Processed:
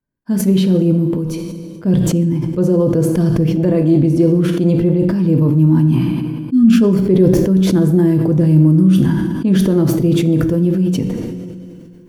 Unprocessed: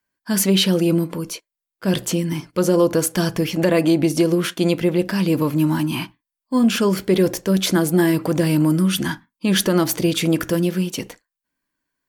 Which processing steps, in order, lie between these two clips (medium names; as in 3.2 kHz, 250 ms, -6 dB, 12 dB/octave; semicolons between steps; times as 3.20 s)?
tilt shelf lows +7 dB, about 930 Hz; spectral selection erased 6.02–6.81 s, 380–1100 Hz; bass shelf 380 Hz +11.5 dB; two-slope reverb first 0.81 s, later 2.3 s, from -19 dB, DRR 6 dB; decay stretcher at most 24 dB/s; trim -9.5 dB